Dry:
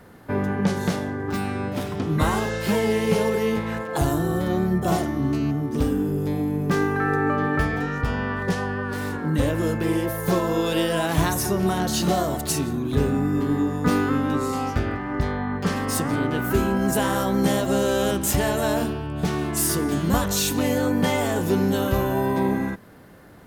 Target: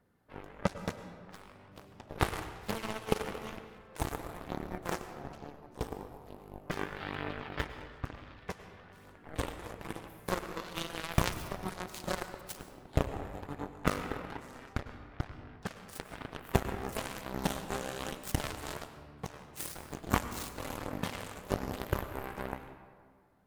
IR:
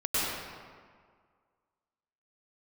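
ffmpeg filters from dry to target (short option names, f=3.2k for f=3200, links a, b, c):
-filter_complex "[0:a]aeval=exprs='0.447*(cos(1*acos(clip(val(0)/0.447,-1,1)))-cos(1*PI/2))+0.158*(cos(3*acos(clip(val(0)/0.447,-1,1)))-cos(3*PI/2))':c=same,aphaser=in_gain=1:out_gain=1:delay=2.7:decay=0.27:speed=1.1:type=triangular,asplit=2[a][b];[1:a]atrim=start_sample=2205[c];[b][c]afir=irnorm=-1:irlink=0,volume=-20dB[d];[a][d]amix=inputs=2:normalize=0,volume=-1.5dB"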